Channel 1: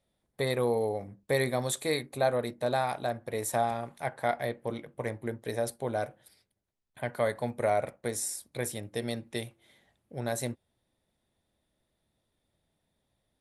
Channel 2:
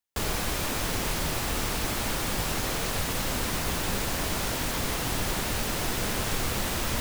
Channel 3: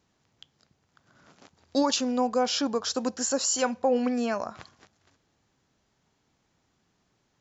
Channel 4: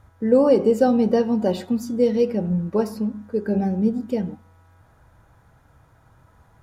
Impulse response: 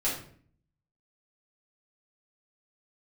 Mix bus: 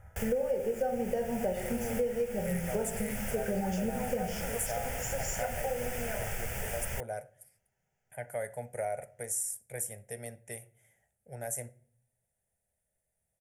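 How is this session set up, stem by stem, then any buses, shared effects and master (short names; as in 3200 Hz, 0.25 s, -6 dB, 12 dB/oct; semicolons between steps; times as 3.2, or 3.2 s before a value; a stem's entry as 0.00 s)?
-6.0 dB, 1.15 s, send -22.5 dB, resonant high shelf 5300 Hz +9 dB, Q 1.5
-5.0 dB, 0.00 s, no send, dry
-9.5 dB, 1.80 s, send -10 dB, dry
-1.5 dB, 0.00 s, send -9 dB, dry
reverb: on, RT60 0.50 s, pre-delay 4 ms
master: fixed phaser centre 1100 Hz, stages 6; compressor 6:1, threshold -29 dBFS, peak gain reduction 17 dB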